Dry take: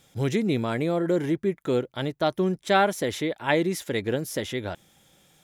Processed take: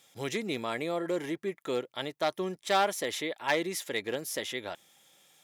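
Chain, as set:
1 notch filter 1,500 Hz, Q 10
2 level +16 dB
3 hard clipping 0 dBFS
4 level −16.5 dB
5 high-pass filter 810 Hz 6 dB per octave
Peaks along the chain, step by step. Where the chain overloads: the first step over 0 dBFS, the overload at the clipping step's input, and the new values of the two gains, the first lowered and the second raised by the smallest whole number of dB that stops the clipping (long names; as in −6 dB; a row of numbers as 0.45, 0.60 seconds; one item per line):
−7.5, +8.5, 0.0, −16.5, −12.5 dBFS
step 2, 8.5 dB
step 2 +7 dB, step 4 −7.5 dB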